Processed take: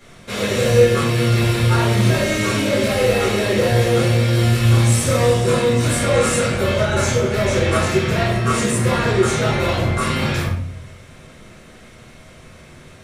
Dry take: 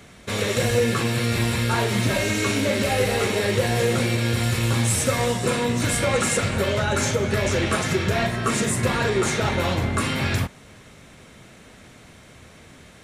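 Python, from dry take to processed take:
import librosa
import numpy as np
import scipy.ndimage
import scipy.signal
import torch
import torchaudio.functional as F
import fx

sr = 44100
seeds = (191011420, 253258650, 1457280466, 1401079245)

y = fx.room_shoebox(x, sr, seeds[0], volume_m3=89.0, walls='mixed', distance_m=2.2)
y = y * 10.0 ** (-6.0 / 20.0)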